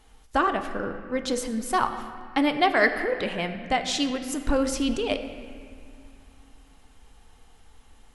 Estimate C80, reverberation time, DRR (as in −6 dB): 10.0 dB, 2.2 s, 7.0 dB